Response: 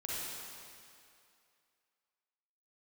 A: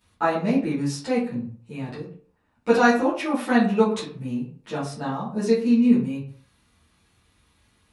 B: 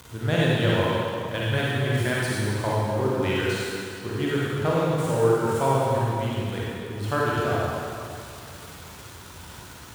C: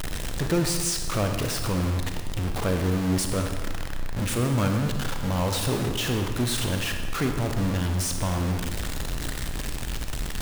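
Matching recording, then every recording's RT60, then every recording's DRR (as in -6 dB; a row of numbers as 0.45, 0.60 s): B; 0.50, 2.5, 1.4 s; -13.0, -7.0, 4.5 dB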